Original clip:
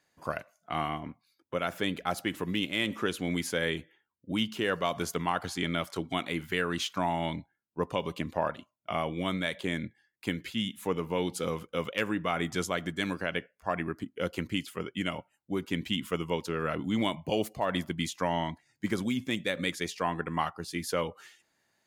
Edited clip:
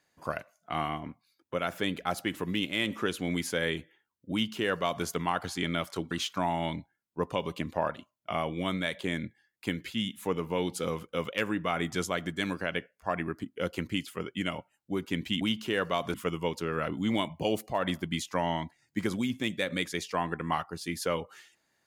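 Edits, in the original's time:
4.32–5.05 copy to 16.01
6.11–6.71 cut

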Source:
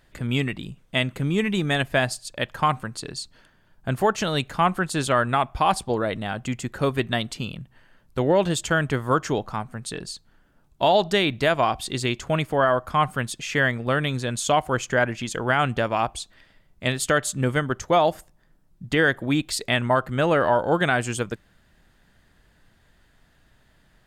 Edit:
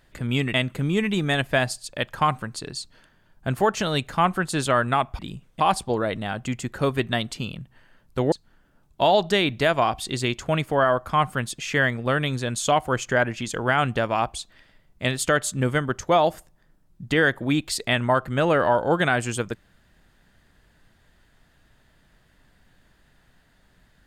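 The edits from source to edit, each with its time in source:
0.54–0.95 move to 5.6
8.32–10.13 cut

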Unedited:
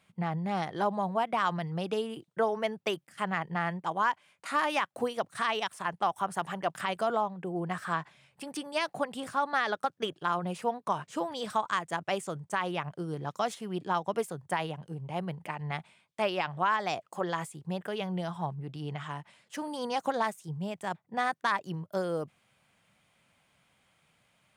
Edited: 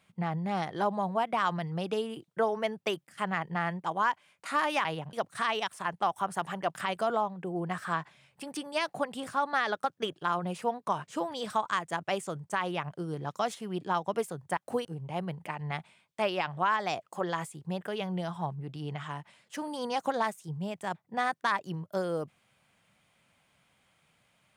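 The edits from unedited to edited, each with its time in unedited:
4.85–5.13 swap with 14.57–14.85

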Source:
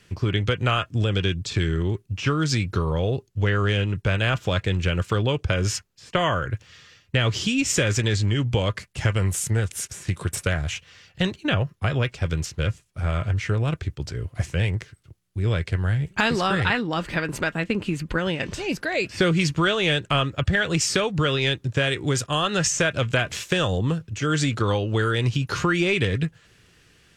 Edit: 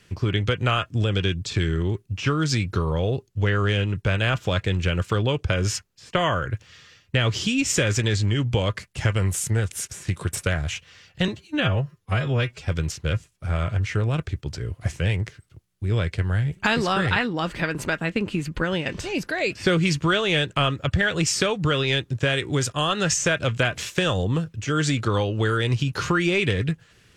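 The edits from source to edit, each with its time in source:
11.28–12.2 stretch 1.5×

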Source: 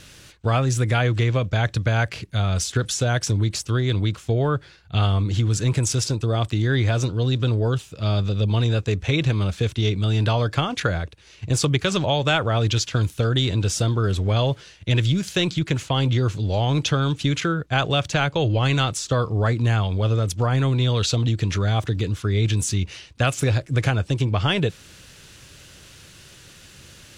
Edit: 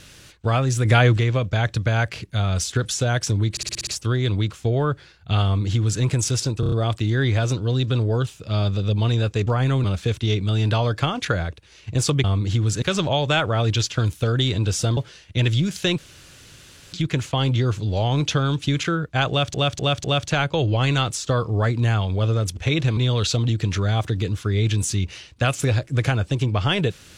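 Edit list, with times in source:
0.85–1.17 gain +5 dB
3.51 stutter 0.06 s, 7 plays
5.08–5.66 copy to 11.79
6.24 stutter 0.03 s, 5 plays
8.99–9.39 swap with 20.39–20.76
13.94–14.49 cut
15.5 insert room tone 0.95 s
17.86–18.11 loop, 4 plays

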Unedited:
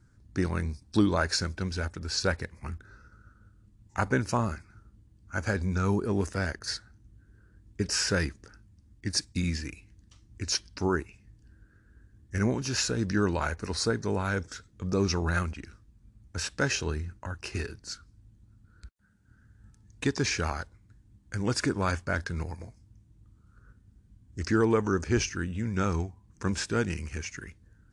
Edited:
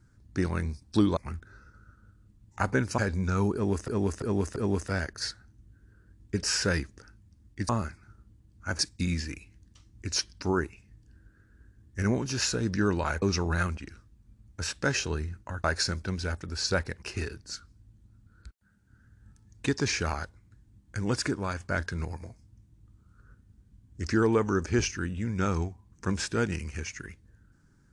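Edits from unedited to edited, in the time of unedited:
1.17–2.55 move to 17.4
4.36–5.46 move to 9.15
6.02–6.36 loop, 4 plays
13.58–14.98 cut
21.5–21.98 fade out, to -6.5 dB

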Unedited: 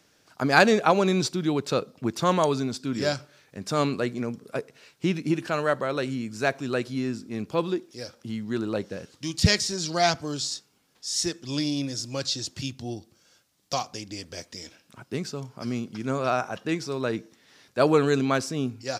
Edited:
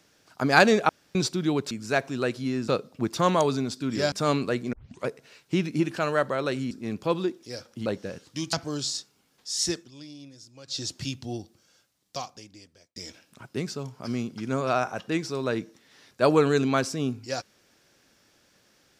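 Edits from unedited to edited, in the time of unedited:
0.89–1.15 room tone
3.15–3.63 cut
4.24 tape start 0.34 s
6.22–7.19 move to 1.71
8.34–8.73 cut
9.4–10.1 cut
11.34–12.38 dip -17 dB, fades 0.14 s
12.93–14.53 fade out

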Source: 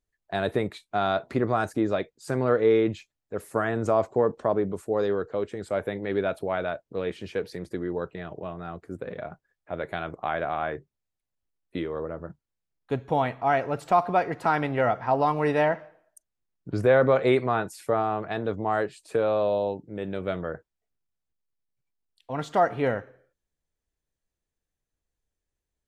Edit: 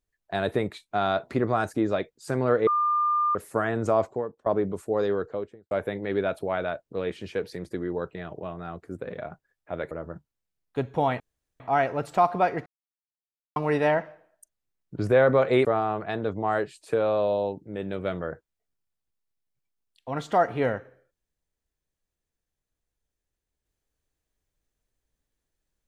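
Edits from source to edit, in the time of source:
2.67–3.35 bleep 1200 Hz -20.5 dBFS
4.05–4.46 fade out quadratic, to -22 dB
5.2–5.71 studio fade out
9.91–12.05 cut
13.34 insert room tone 0.40 s
14.4–15.3 mute
17.39–17.87 cut

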